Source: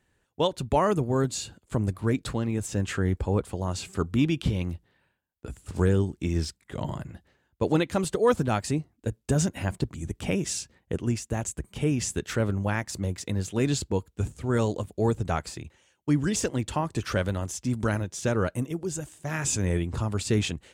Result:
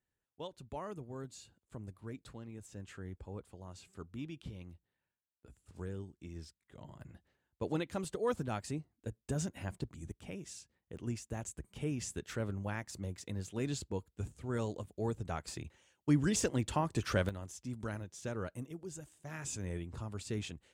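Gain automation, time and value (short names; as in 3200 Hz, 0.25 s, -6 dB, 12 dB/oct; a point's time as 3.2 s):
-20 dB
from 7.01 s -12 dB
from 10.12 s -18 dB
from 10.97 s -11.5 dB
from 15.48 s -5 dB
from 17.29 s -14 dB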